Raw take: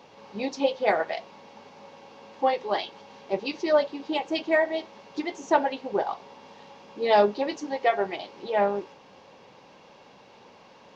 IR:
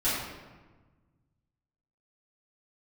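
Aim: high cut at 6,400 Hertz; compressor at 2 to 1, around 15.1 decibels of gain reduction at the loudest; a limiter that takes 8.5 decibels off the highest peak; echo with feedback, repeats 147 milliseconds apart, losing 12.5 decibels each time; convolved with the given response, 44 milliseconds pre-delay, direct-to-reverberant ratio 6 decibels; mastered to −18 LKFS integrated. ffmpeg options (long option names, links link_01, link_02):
-filter_complex "[0:a]lowpass=6400,acompressor=threshold=-44dB:ratio=2,alimiter=level_in=6.5dB:limit=-24dB:level=0:latency=1,volume=-6.5dB,aecho=1:1:147|294|441:0.237|0.0569|0.0137,asplit=2[link_01][link_02];[1:a]atrim=start_sample=2205,adelay=44[link_03];[link_02][link_03]afir=irnorm=-1:irlink=0,volume=-17dB[link_04];[link_01][link_04]amix=inputs=2:normalize=0,volume=24dB"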